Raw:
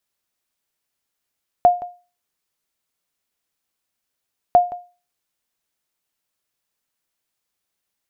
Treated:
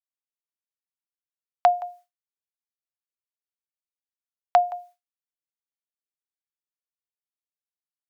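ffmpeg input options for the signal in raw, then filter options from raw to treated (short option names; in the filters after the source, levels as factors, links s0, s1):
-f lavfi -i "aevalsrc='0.596*(sin(2*PI*710*mod(t,2.9))*exp(-6.91*mod(t,2.9)/0.33)+0.126*sin(2*PI*710*max(mod(t,2.9)-0.17,0))*exp(-6.91*max(mod(t,2.9)-0.17,0)/0.33))':d=5.8:s=44100"
-filter_complex "[0:a]agate=range=0.0224:threshold=0.00708:ratio=3:detection=peak,highpass=f=810:w=0.5412,highpass=f=810:w=1.3066,asplit=2[s0][s1];[s1]acompressor=threshold=0.0447:ratio=6,volume=0.944[s2];[s0][s2]amix=inputs=2:normalize=0"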